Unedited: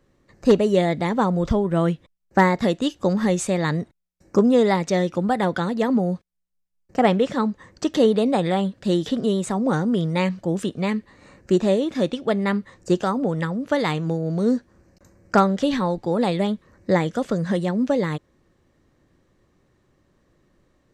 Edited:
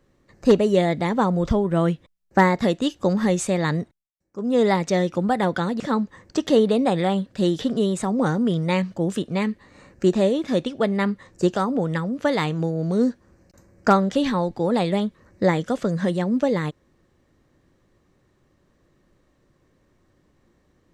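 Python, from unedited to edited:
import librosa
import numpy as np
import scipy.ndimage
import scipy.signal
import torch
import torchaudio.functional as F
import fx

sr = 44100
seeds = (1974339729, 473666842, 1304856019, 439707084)

y = fx.edit(x, sr, fx.fade_down_up(start_s=3.81, length_s=0.83, db=-22.0, fade_s=0.28),
    fx.cut(start_s=5.8, length_s=1.47), tone=tone)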